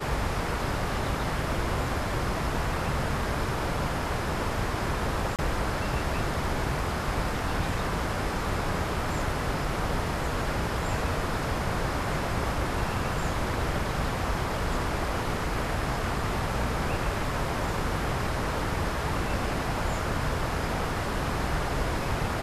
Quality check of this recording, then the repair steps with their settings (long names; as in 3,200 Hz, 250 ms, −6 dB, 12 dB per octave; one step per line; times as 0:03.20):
0:05.36–0:05.39: drop-out 27 ms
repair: repair the gap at 0:05.36, 27 ms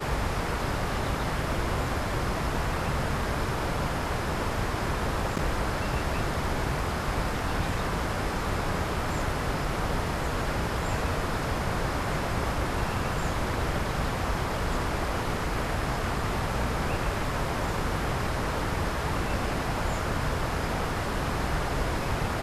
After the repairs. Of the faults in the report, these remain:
none of them is left